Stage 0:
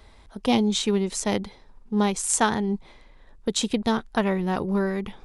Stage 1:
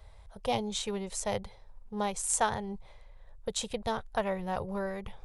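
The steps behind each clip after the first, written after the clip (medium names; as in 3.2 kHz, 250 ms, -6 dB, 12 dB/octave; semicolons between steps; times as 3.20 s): FFT filter 110 Hz 0 dB, 290 Hz -22 dB, 540 Hz -2 dB, 1.3 kHz -8 dB, 5.1 kHz -9 dB, 9.2 kHz -5 dB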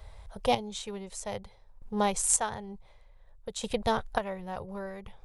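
square tremolo 0.55 Hz, depth 65%, duty 30%; trim +5 dB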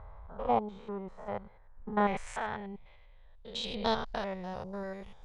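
spectrogram pixelated in time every 100 ms; low-pass sweep 1.2 kHz -> 7.1 kHz, 1.05–4.99 s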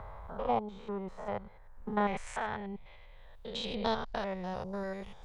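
three bands compressed up and down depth 40%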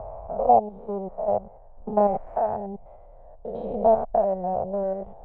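in parallel at -4 dB: sample-and-hold 13×; on the sum: resonant low-pass 680 Hz, resonance Q 6.1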